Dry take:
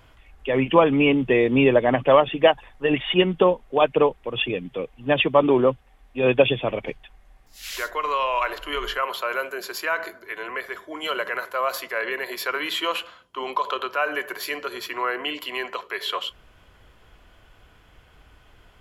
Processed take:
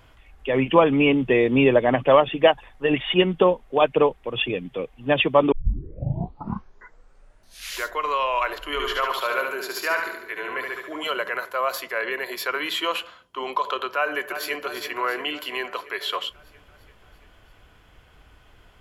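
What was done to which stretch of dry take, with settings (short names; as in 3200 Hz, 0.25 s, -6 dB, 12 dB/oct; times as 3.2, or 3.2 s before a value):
5.52 tape start 2.31 s
8.72–11.07 feedback echo 72 ms, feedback 48%, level -4 dB
13.96–14.63 echo throw 0.34 s, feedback 65%, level -10 dB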